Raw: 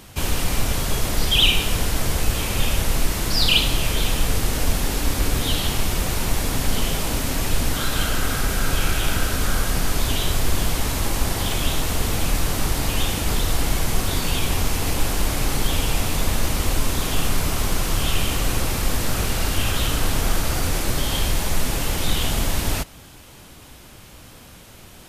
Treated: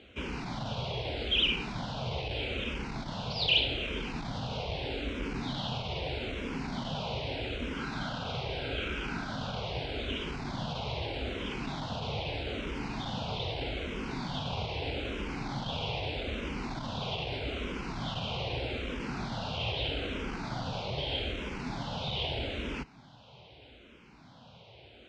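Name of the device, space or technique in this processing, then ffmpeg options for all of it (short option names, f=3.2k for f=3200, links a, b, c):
barber-pole phaser into a guitar amplifier: -filter_complex "[0:a]asplit=2[a][b];[b]afreqshift=-0.8[c];[a][c]amix=inputs=2:normalize=1,asoftclip=type=tanh:threshold=-13dB,highpass=88,equalizer=f=90:t=q:w=4:g=-7,equalizer=f=180:t=q:w=4:g=-4,equalizer=f=320:t=q:w=4:g=-5,equalizer=f=1.2k:t=q:w=4:g=-8,equalizer=f=1.8k:t=q:w=4:g=-10,lowpass=f=3.7k:w=0.5412,lowpass=f=3.7k:w=1.3066,volume=-2.5dB"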